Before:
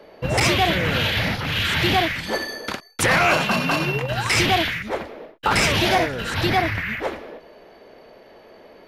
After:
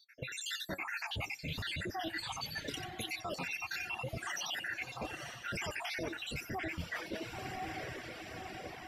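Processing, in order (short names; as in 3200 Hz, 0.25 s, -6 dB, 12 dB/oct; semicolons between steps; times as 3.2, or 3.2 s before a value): random spectral dropouts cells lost 77%; diffused feedback echo 1.083 s, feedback 52%, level -14.5 dB; flange 0.39 Hz, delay 6.2 ms, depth 7.8 ms, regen +74%; limiter -24 dBFS, peak gain reduction 10.5 dB; on a send at -8 dB: reverb, pre-delay 89 ms; on the sum: reverb removal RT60 0.75 s; reverse; compressor 6:1, threshold -42 dBFS, peak gain reduction 12.5 dB; reverse; gain +5 dB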